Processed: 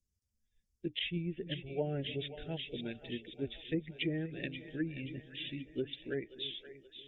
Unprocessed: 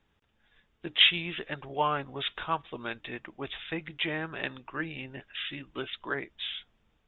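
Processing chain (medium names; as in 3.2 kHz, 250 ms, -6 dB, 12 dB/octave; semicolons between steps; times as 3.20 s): expander on every frequency bin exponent 1.5; Butterworth band-stop 1.1 kHz, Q 0.53; two-band feedback delay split 450 Hz, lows 299 ms, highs 528 ms, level -13 dB; low-pass that closes with the level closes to 1 kHz, closed at -33 dBFS; trim +4 dB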